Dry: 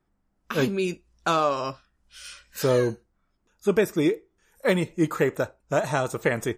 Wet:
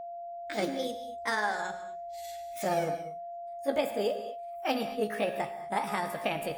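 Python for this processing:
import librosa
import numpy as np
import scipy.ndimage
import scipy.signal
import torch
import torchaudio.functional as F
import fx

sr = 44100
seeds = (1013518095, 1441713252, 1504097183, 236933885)

y = fx.pitch_heads(x, sr, semitones=5.5)
y = fx.hum_notches(y, sr, base_hz=60, count=3)
y = fx.rev_gated(y, sr, seeds[0], gate_ms=260, shape='flat', drr_db=8.0)
y = y + 10.0 ** (-31.0 / 20.0) * np.sin(2.0 * np.pi * 690.0 * np.arange(len(y)) / sr)
y = F.gain(torch.from_numpy(y), -7.0).numpy()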